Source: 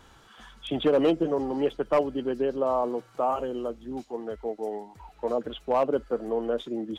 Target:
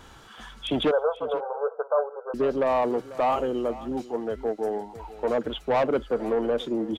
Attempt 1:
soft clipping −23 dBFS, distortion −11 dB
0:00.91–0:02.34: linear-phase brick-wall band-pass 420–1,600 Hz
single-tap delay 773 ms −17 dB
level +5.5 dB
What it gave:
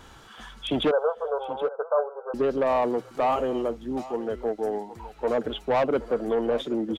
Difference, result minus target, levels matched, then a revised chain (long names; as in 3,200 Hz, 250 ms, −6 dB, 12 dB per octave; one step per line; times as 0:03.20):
echo 280 ms late
soft clipping −23 dBFS, distortion −11 dB
0:00.91–0:02.34: linear-phase brick-wall band-pass 420–1,600 Hz
single-tap delay 493 ms −17 dB
level +5.5 dB